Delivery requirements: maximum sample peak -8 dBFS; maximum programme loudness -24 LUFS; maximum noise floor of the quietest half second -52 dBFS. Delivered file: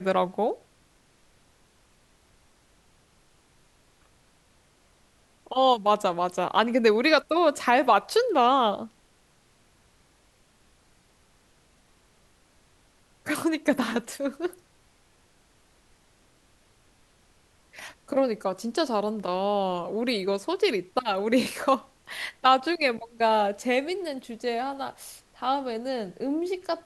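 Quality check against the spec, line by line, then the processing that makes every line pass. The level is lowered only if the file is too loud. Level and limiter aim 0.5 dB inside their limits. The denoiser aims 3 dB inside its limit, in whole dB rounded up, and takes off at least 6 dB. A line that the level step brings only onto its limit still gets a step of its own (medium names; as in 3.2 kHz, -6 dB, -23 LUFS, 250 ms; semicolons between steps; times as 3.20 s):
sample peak -6.5 dBFS: fail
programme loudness -25.5 LUFS: pass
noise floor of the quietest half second -62 dBFS: pass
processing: peak limiter -8.5 dBFS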